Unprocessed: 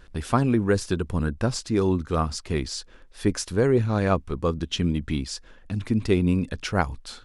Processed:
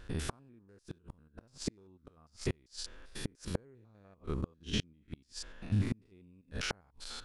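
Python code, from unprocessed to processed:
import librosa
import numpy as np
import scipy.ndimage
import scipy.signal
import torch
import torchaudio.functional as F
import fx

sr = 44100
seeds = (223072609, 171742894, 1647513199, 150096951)

y = fx.spec_steps(x, sr, hold_ms=100)
y = fx.gate_flip(y, sr, shuts_db=-20.0, range_db=-37)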